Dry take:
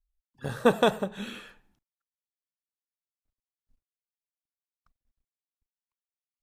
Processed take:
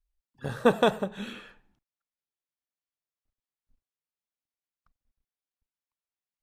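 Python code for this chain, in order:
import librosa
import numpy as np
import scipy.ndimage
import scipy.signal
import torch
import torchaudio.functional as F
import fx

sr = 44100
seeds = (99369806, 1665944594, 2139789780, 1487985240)

y = fx.high_shelf(x, sr, hz=6300.0, db=fx.steps((0.0, -5.0), (1.32, -11.5)))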